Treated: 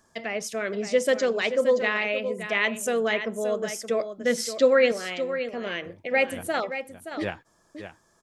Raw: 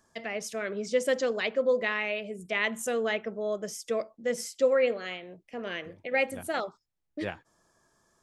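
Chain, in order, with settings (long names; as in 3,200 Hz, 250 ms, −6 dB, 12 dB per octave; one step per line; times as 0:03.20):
0:04.10–0:04.92: graphic EQ with 15 bands 250 Hz +5 dB, 1,600 Hz +6 dB, 4,000 Hz +10 dB
on a send: single-tap delay 573 ms −10 dB
on the sum: level +4 dB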